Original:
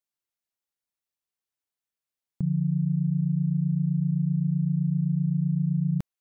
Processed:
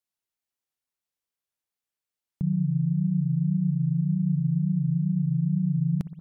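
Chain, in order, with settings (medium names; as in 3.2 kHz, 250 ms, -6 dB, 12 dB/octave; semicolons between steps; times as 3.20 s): wow and flutter 110 cents; spring tank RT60 1.3 s, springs 60 ms, chirp 35 ms, DRR 13.5 dB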